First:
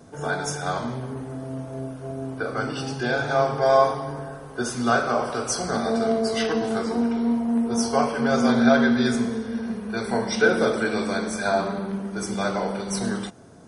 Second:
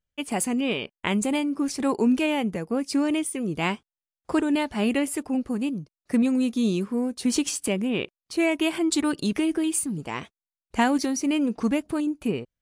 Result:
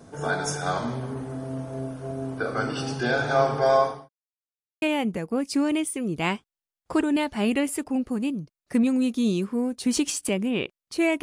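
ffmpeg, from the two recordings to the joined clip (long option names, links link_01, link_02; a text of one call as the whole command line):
ffmpeg -i cue0.wav -i cue1.wav -filter_complex "[0:a]apad=whole_dur=11.22,atrim=end=11.22,asplit=2[link_01][link_02];[link_01]atrim=end=4.09,asetpts=PTS-STARTPTS,afade=type=out:start_time=3.48:duration=0.61:curve=qsin[link_03];[link_02]atrim=start=4.09:end=4.82,asetpts=PTS-STARTPTS,volume=0[link_04];[1:a]atrim=start=2.21:end=8.61,asetpts=PTS-STARTPTS,afade=type=in:duration=0.004:curve=hsin[link_05];[link_03][link_04][link_05]concat=n=3:v=0:a=1" out.wav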